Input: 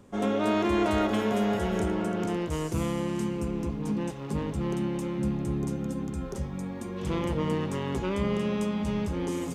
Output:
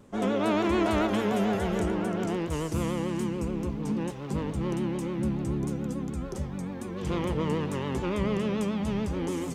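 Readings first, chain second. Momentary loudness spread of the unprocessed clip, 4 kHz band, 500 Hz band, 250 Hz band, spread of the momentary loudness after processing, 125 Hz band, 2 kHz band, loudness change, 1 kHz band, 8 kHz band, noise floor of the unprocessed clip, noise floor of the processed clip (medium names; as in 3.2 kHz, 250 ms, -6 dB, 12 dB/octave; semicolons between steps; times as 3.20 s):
7 LU, 0.0 dB, 0.0 dB, 0.0 dB, 7 LU, 0.0 dB, +0.5 dB, 0.0 dB, 0.0 dB, 0.0 dB, -37 dBFS, -37 dBFS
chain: vibrato 6.9 Hz 92 cents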